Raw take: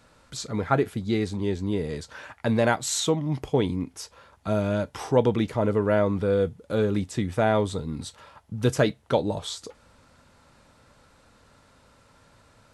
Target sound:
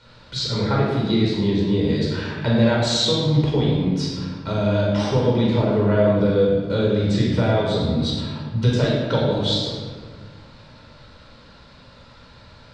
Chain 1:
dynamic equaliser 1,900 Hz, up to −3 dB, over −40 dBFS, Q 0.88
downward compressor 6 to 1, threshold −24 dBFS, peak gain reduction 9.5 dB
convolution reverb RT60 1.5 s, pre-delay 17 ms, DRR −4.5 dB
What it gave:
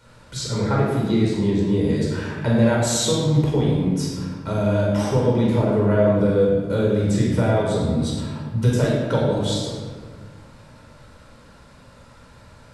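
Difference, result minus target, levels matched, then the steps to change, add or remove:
4,000 Hz band −6.0 dB
add after dynamic equaliser: low-pass with resonance 4,200 Hz, resonance Q 2.6

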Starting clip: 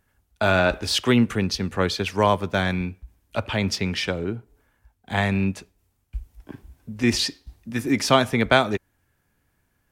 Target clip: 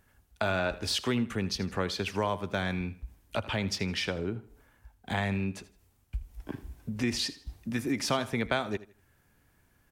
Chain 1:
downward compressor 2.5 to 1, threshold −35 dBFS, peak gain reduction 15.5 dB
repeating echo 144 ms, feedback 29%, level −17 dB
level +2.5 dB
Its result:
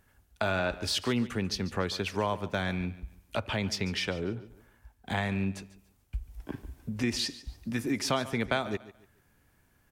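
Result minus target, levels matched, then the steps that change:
echo 64 ms late
change: repeating echo 80 ms, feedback 29%, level −17 dB

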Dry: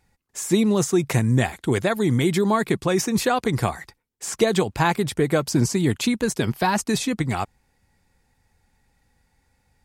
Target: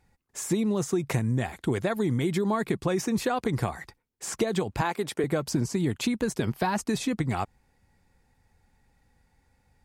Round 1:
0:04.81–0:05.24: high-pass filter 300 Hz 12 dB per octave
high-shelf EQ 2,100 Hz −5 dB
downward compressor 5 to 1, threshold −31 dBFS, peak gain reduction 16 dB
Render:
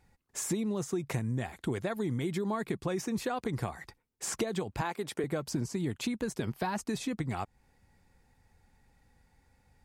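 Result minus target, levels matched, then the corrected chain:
downward compressor: peak gain reduction +6.5 dB
0:04.81–0:05.24: high-pass filter 300 Hz 12 dB per octave
high-shelf EQ 2,100 Hz −5 dB
downward compressor 5 to 1, threshold −23 dBFS, peak gain reduction 9.5 dB

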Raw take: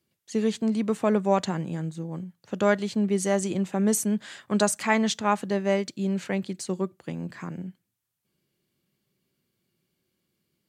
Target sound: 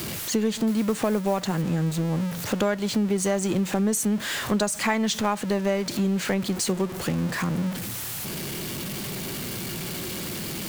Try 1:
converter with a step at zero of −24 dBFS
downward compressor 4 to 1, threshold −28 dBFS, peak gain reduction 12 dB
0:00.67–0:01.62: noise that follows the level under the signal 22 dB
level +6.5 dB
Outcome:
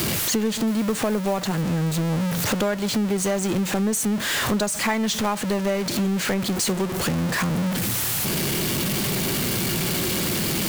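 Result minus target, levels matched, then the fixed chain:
converter with a step at zero: distortion +7 dB
converter with a step at zero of −32.5 dBFS
downward compressor 4 to 1, threshold −28 dBFS, peak gain reduction 11.5 dB
0:00.67–0:01.62: noise that follows the level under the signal 22 dB
level +6.5 dB

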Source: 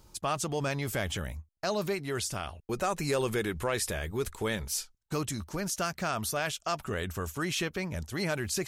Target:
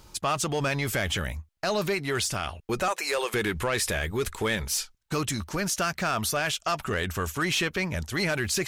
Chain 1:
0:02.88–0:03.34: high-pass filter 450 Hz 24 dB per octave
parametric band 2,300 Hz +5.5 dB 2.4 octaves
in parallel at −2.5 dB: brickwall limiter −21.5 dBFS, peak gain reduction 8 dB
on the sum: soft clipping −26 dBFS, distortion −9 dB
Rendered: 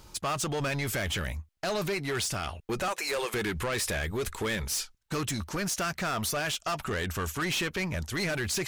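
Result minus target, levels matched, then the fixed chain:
soft clipping: distortion +9 dB
0:02.88–0:03.34: high-pass filter 450 Hz 24 dB per octave
parametric band 2,300 Hz +5.5 dB 2.4 octaves
in parallel at −2.5 dB: brickwall limiter −21.5 dBFS, peak gain reduction 8 dB
on the sum: soft clipping −18 dBFS, distortion −18 dB

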